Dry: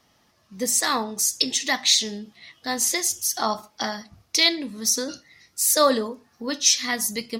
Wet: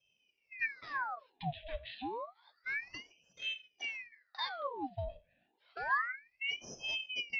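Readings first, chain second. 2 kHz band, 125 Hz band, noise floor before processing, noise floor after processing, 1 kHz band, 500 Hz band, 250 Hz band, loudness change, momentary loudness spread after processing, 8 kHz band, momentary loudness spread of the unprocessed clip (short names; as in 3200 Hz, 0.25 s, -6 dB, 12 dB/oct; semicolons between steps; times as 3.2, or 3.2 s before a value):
-7.5 dB, n/a, -64 dBFS, -79 dBFS, -11.5 dB, -18.5 dB, -20.5 dB, -17.5 dB, 13 LU, -37.5 dB, 14 LU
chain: frequency shift +31 Hz; vocal tract filter i; ring modulator with a swept carrier 1600 Hz, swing 80%, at 0.29 Hz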